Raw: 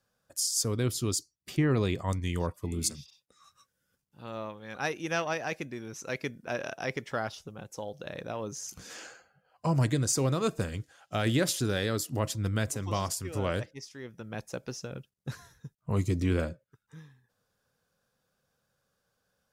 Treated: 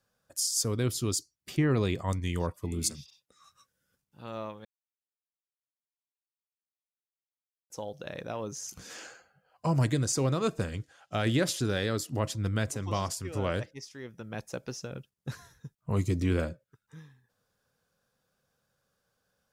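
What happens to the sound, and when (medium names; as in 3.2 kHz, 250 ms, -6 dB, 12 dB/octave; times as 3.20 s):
4.65–7.70 s: mute
10.06–13.62 s: treble shelf 11 kHz -9.5 dB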